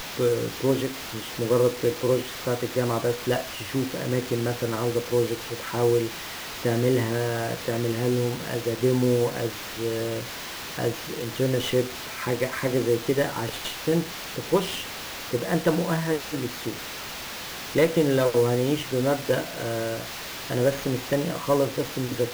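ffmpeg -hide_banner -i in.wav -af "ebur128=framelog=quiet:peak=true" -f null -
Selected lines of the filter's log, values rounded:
Integrated loudness:
  I:         -26.1 LUFS
  Threshold: -36.1 LUFS
Loudness range:
  LRA:         2.4 LU
  Threshold: -46.1 LUFS
  LRA low:   -27.2 LUFS
  LRA high:  -24.8 LUFS
True peak:
  Peak:       -8.5 dBFS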